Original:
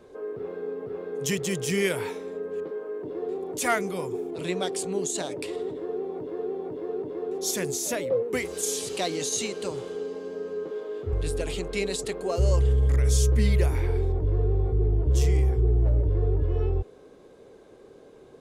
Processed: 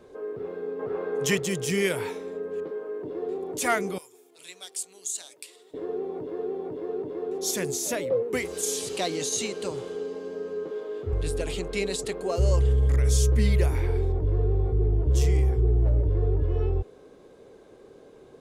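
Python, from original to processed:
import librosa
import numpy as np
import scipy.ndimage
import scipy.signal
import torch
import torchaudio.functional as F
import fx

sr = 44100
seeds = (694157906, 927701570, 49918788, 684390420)

y = fx.peak_eq(x, sr, hz=1100.0, db=9.0, octaves=2.5, at=(0.79, 1.4))
y = fx.differentiator(y, sr, at=(3.98, 5.74))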